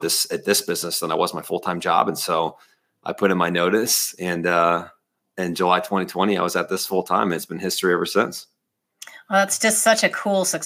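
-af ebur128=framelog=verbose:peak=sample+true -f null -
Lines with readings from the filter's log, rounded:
Integrated loudness:
  I:         -20.6 LUFS
  Threshold: -31.1 LUFS
Loudness range:
  LRA:         2.0 LU
  Threshold: -41.6 LUFS
  LRA low:   -22.6 LUFS
  LRA high:  -20.7 LUFS
Sample peak:
  Peak:       -1.8 dBFS
True peak:
  Peak:       -1.8 dBFS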